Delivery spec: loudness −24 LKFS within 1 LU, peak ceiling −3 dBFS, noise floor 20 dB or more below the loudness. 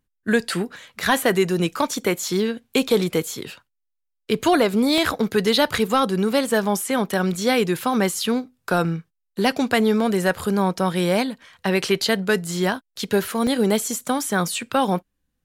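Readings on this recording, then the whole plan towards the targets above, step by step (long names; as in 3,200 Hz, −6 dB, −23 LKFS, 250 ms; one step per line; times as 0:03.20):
number of dropouts 3; longest dropout 1.3 ms; integrated loudness −21.5 LKFS; sample peak −7.5 dBFS; target loudness −24.0 LKFS
→ repair the gap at 0:04.98/0:12.47/0:13.47, 1.3 ms
level −2.5 dB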